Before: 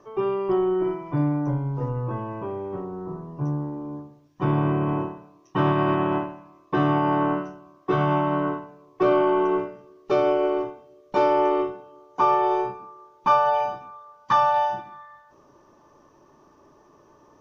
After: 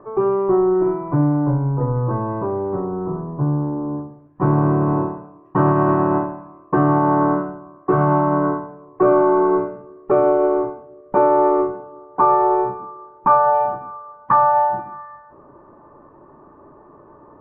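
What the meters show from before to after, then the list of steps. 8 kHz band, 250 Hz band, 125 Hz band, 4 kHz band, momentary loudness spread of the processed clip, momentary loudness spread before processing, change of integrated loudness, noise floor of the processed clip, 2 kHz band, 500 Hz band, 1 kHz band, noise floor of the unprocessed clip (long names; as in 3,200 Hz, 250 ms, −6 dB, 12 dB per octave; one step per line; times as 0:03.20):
can't be measured, +6.0 dB, +6.5 dB, below −15 dB, 16 LU, 15 LU, +5.5 dB, −48 dBFS, +1.5 dB, +6.0 dB, +5.5 dB, −57 dBFS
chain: in parallel at +0.5 dB: downward compressor, threshold −28 dBFS, peak gain reduction 13 dB
on the sum: low-pass filter 1,500 Hz 24 dB per octave
level +3 dB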